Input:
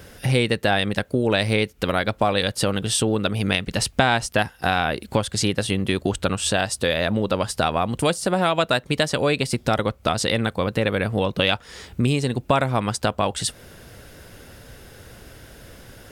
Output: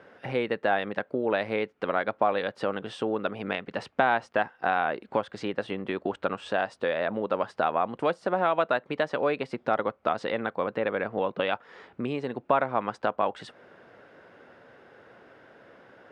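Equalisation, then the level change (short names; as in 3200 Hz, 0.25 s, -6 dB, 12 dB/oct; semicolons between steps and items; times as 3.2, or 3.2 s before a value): HPF 210 Hz 12 dB/oct; LPF 1400 Hz 12 dB/oct; low shelf 400 Hz -10.5 dB; 0.0 dB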